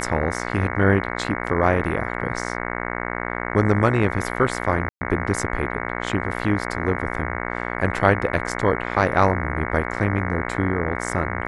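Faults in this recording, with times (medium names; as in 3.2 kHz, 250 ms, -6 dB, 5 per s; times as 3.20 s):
buzz 60 Hz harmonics 37 -28 dBFS
4.89–5.01 s: dropout 120 ms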